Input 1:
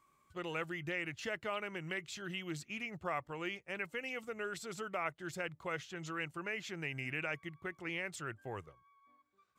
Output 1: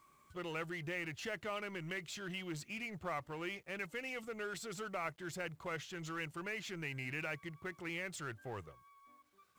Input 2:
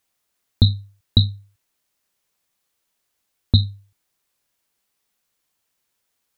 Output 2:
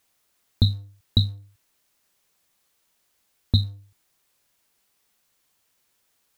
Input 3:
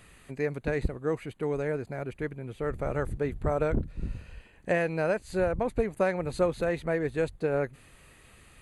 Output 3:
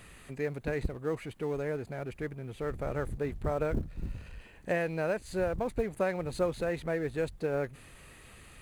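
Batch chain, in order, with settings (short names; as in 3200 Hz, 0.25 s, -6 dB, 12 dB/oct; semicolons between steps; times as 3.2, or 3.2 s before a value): G.711 law mismatch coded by mu; gain -4.5 dB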